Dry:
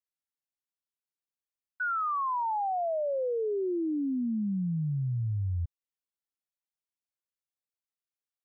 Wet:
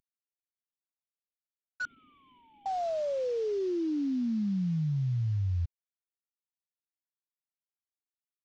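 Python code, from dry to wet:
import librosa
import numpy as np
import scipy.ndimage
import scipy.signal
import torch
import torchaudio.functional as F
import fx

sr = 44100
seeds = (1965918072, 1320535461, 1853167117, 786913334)

y = fx.cvsd(x, sr, bps=32000)
y = fx.formant_cascade(y, sr, vowel='i', at=(1.85, 2.66))
y = fx.low_shelf(y, sr, hz=370.0, db=3.5)
y = F.gain(torch.from_numpy(y), -2.0).numpy()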